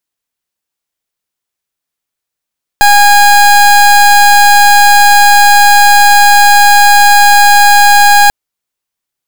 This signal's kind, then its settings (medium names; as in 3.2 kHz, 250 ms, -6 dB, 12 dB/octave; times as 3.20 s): pulse 819 Hz, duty 28% -4 dBFS 5.49 s